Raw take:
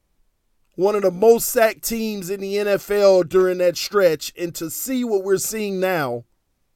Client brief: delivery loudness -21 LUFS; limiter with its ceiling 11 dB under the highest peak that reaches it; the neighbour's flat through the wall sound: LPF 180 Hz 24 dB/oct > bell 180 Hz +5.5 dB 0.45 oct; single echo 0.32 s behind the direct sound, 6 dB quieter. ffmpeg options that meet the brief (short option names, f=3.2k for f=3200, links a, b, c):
-af "alimiter=limit=-13dB:level=0:latency=1,lowpass=f=180:w=0.5412,lowpass=f=180:w=1.3066,equalizer=f=180:t=o:w=0.45:g=5.5,aecho=1:1:320:0.501,volume=13.5dB"